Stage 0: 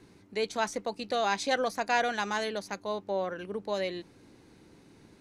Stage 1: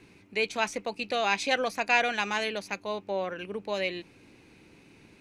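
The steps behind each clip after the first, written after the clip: bell 2500 Hz +13 dB 0.47 oct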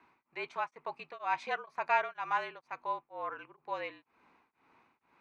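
band-pass 1100 Hz, Q 3.8; frequency shift -47 Hz; beating tremolo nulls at 2.1 Hz; gain +6 dB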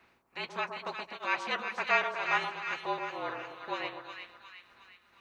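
spectral limiter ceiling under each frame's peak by 18 dB; notch comb 150 Hz; split-band echo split 1200 Hz, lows 0.124 s, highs 0.36 s, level -6 dB; gain +3 dB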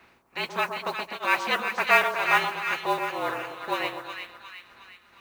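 modulation noise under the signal 23 dB; gain +7.5 dB

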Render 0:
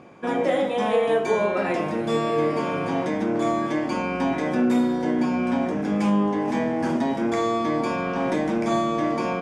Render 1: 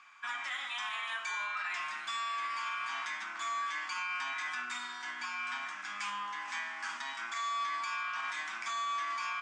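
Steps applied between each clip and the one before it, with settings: elliptic band-pass 1200–8000 Hz, stop band 40 dB; limiter -28 dBFS, peak gain reduction 7.5 dB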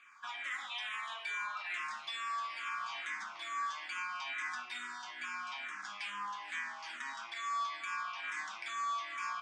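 endless phaser -2.3 Hz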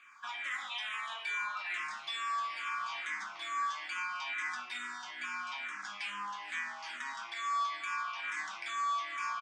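doubler 20 ms -12 dB; gain +1.5 dB

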